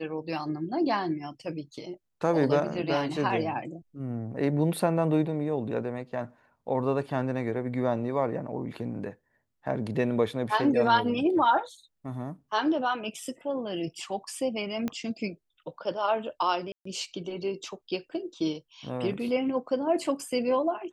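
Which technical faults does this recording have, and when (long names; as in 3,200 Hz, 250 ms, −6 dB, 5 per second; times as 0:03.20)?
0:14.88: click −18 dBFS
0:16.72–0:16.85: drop-out 134 ms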